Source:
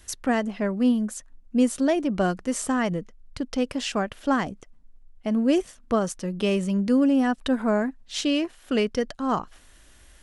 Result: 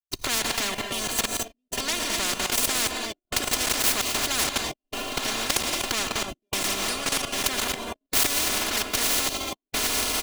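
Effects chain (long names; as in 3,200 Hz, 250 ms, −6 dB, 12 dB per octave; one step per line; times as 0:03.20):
running median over 25 samples
camcorder AGC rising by 42 dB per second
on a send: feedback delay with all-pass diffusion 1,008 ms, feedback 56%, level −7.5 dB
on the sum: gate pattern ".xxxxxx.xxx..." 131 BPM −60 dB
reverb whose tail is shaped and stops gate 270 ms rising, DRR 7 dB
noise gate −40 dBFS, range −16 dB
parametric band 1,400 Hz −6.5 dB 1.2 octaves
comb filter 2.9 ms, depth 98%
output level in coarse steps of 14 dB
high-shelf EQ 2,000 Hz +11.5 dB
every bin compressed towards the loudest bin 10 to 1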